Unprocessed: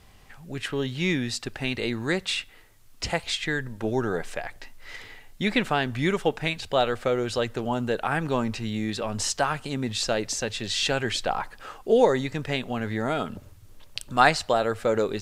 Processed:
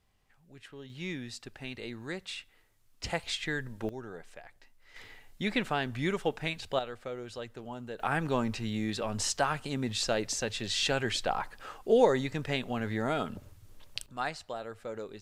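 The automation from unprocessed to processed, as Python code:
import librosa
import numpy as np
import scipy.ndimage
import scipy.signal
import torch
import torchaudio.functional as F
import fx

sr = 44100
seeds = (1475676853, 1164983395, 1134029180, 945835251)

y = fx.gain(x, sr, db=fx.steps((0.0, -19.0), (0.9, -12.5), (3.04, -6.0), (3.89, -16.5), (4.96, -6.5), (6.79, -14.5), (8.0, -4.0), (14.06, -16.0)))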